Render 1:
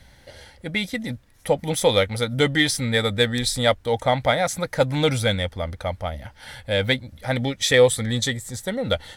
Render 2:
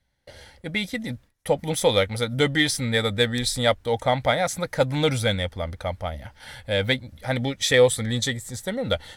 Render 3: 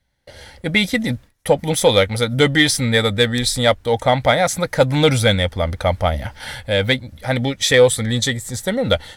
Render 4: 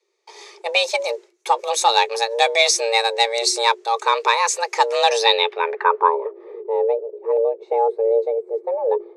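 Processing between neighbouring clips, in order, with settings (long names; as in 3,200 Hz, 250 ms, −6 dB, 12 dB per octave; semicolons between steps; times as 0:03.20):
noise gate with hold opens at −38 dBFS; level −1.5 dB
in parallel at −5 dB: soft clipping −13.5 dBFS, distortion −15 dB; on the sum: automatic gain control gain up to 11.5 dB; level −1 dB
frequency shifter +340 Hz; low-pass filter sweep 6,800 Hz → 470 Hz, 0:05.08–0:06.44; level −3 dB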